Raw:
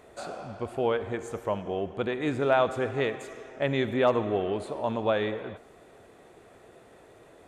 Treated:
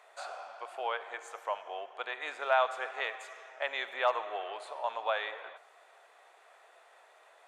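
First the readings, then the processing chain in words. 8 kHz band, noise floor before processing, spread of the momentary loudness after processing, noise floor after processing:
no reading, -54 dBFS, 15 LU, -61 dBFS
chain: high-pass 720 Hz 24 dB/octave; treble shelf 7.4 kHz -9 dB

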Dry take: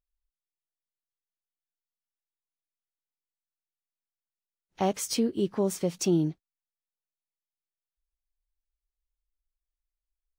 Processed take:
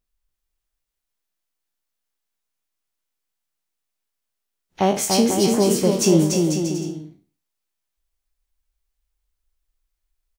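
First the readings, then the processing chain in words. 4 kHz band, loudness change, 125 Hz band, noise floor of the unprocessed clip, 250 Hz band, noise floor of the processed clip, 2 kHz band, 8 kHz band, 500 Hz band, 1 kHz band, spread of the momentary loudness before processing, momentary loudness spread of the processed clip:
+12.0 dB, +9.5 dB, +10.0 dB, under -85 dBFS, +10.0 dB, -81 dBFS, +12.0 dB, +12.5 dB, +10.5 dB, +10.5 dB, 4 LU, 10 LU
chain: spectral sustain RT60 0.38 s; bouncing-ball echo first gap 290 ms, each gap 0.7×, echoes 5; trim +7.5 dB

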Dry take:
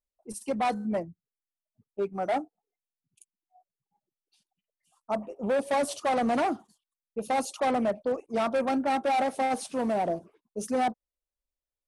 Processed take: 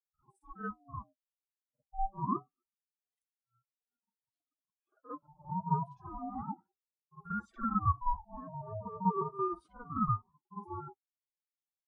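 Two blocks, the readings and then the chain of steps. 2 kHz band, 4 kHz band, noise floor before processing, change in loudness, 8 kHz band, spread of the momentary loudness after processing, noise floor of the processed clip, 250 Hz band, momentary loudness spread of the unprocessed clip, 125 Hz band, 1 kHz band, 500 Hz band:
-15.0 dB, under -35 dB, under -85 dBFS, -8.0 dB, under -35 dB, 16 LU, under -85 dBFS, -8.5 dB, 12 LU, +7.0 dB, -7.0 dB, -17.0 dB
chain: spectral contrast enhancement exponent 2.4; flange 0.21 Hz, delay 6.6 ms, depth 2.3 ms, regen -59%; wah-wah 0.44 Hz 330–1000 Hz, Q 6.4; pre-echo 48 ms -12 dB; ring modulator with a swept carrier 490 Hz, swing 25%, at 0.28 Hz; trim +6.5 dB

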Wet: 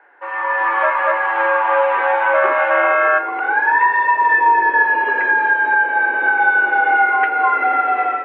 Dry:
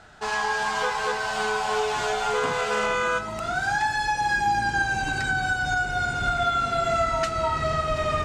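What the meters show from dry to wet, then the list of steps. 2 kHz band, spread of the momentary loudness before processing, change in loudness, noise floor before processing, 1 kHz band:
+11.5 dB, 3 LU, +10.0 dB, -32 dBFS, +10.0 dB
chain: level rider gain up to 11.5 dB; mistuned SSB +120 Hz 240–2200 Hz

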